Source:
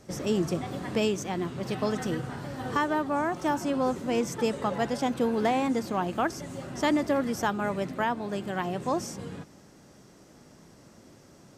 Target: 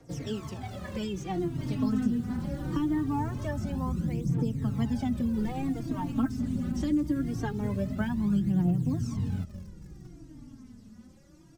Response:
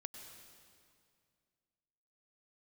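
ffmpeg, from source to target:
-filter_complex "[0:a]asettb=1/sr,asplit=3[link_01][link_02][link_03];[link_01]atrim=end=1.344[link_04];[link_02]atrim=start=1.34:end=2.08,asetpts=PTS-STARTPTS,afade=type=in:duration=0.004:curve=qsin,afade=type=out:start_time=0.736:duration=0.004:curve=qsin,asplit=2[link_05][link_06];[link_06]adelay=20,volume=-8dB[link_07];[link_05][link_07]amix=inputs=2:normalize=0,atrim=end_sample=32634[link_08];[link_03]atrim=start=2.076[link_09];[link_04][link_08]acrossfade=duration=0.004:curve1=hsin:curve2=qsin[link_10];[link_10][link_09]acrossfade=duration=0.004:curve1=qsin:curve2=hsin,asettb=1/sr,asplit=3[link_11][link_12][link_13];[link_11]atrim=end=6.744[link_14];[link_12]atrim=start=6.74:end=7.22,asetpts=PTS-STARTPTS,afade=type=in:duration=0.004:curve=qsin,afade=type=out:start_time=0.476:duration=0.004:curve=qsin,highshelf=frequency=4000:gain=9[link_15];[link_13]atrim=start=7.216[link_16];[link_14][link_15]acrossfade=duration=0.004:curve1=hsin:curve2=qsin[link_17];[link_17][link_16]acrossfade=duration=0.004:curve1=qsin:curve2=hsin,acrossover=split=310[link_18][link_19];[link_18]dynaudnorm=framelen=160:gausssize=17:maxgain=13.5dB[link_20];[link_20][link_19]amix=inputs=2:normalize=0,aecho=1:1:204|408:0.0944|0.0217,asplit=2[link_21][link_22];[link_22]acrusher=bits=5:mix=0:aa=0.000001,volume=-11dB[link_23];[link_21][link_23]amix=inputs=2:normalize=0,asettb=1/sr,asplit=3[link_24][link_25][link_26];[link_24]atrim=end=5.344[link_27];[link_25]atrim=start=5.34:end=6.16,asetpts=PTS-STARTPTS,afade=type=in:duration=0.004:curve=qsin,afade=type=out:start_time=0.816:duration=0.004:curve=qsin,aeval=exprs='sgn(val(0))*max(abs(val(0))-0.0188,0)':channel_layout=same[link_28];[link_26]atrim=start=6.156[link_29];[link_27][link_28]acrossfade=duration=0.004:curve1=hsin:curve2=qsin[link_30];[link_30][link_29]acrossfade=duration=0.004:curve1=qsin:curve2=hsin,asubboost=boost=4.5:cutoff=220,aphaser=in_gain=1:out_gain=1:delay=4.3:decay=0.66:speed=0.23:type=triangular,acrossover=split=220|6500[link_31][link_32][link_33];[link_31]acompressor=threshold=-22dB:ratio=4[link_34];[link_32]acompressor=threshold=-23dB:ratio=4[link_35];[link_33]acompressor=threshold=-51dB:ratio=4[link_36];[link_34][link_35][link_36]amix=inputs=3:normalize=0,asplit=2[link_37][link_38];[link_38]adelay=3.8,afreqshift=-0.69[link_39];[link_37][link_39]amix=inputs=2:normalize=1,volume=-6dB"

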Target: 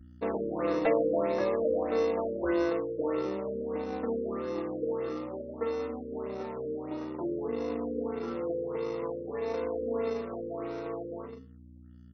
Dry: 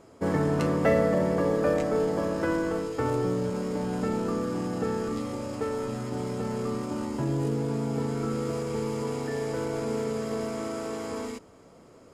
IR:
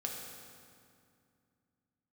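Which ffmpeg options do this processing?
-filter_complex "[0:a]anlmdn=6.31,highpass=frequency=260:width=0.5412,highpass=frequency=260:width=1.3066,bandreject=frequency=50:width_type=h:width=6,bandreject=frequency=100:width_type=h:width=6,bandreject=frequency=150:width_type=h:width=6,bandreject=frequency=200:width_type=h:width=6,bandreject=frequency=250:width_type=h:width=6,bandreject=frequency=300:width_type=h:width=6,bandreject=frequency=350:width_type=h:width=6,bandreject=frequency=400:width_type=h:width=6,bandreject=frequency=450:width_type=h:width=6,aeval=exprs='val(0)+0.00447*(sin(2*PI*60*n/s)+sin(2*PI*2*60*n/s)/2+sin(2*PI*3*60*n/s)/3+sin(2*PI*4*60*n/s)/4+sin(2*PI*5*60*n/s)/5)':channel_layout=same,afreqshift=16,flanger=delay=4:depth=2.4:regen=15:speed=0.51:shape=sinusoidal,asplit=2[link_01][link_02];[link_02]acrusher=samples=28:mix=1:aa=0.000001,volume=-9dB[link_03];[link_01][link_03]amix=inputs=2:normalize=0,asplit=2[link_04][link_05];[link_05]adelay=73,lowpass=frequency=2400:poles=1,volume=-22.5dB,asplit=2[link_06][link_07];[link_07]adelay=73,lowpass=frequency=2400:poles=1,volume=0.35[link_08];[link_04][link_06][link_08]amix=inputs=3:normalize=0,afftfilt=real='re*lt(b*sr/1024,570*pow(6500/570,0.5+0.5*sin(2*PI*1.6*pts/sr)))':imag='im*lt(b*sr/1024,570*pow(6500/570,0.5+0.5*sin(2*PI*1.6*pts/sr)))':win_size=1024:overlap=0.75"

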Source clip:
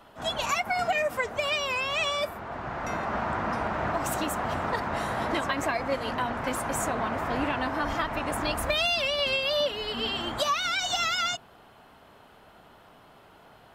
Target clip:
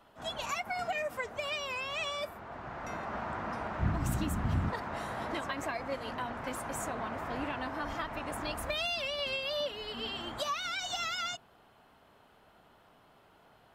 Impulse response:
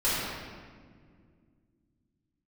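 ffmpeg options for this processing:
-filter_complex "[0:a]asplit=3[link_01][link_02][link_03];[link_01]afade=type=out:start_time=3.79:duration=0.02[link_04];[link_02]asubboost=boost=9.5:cutoff=190,afade=type=in:start_time=3.79:duration=0.02,afade=type=out:start_time=4.69:duration=0.02[link_05];[link_03]afade=type=in:start_time=4.69:duration=0.02[link_06];[link_04][link_05][link_06]amix=inputs=3:normalize=0,volume=-8dB"

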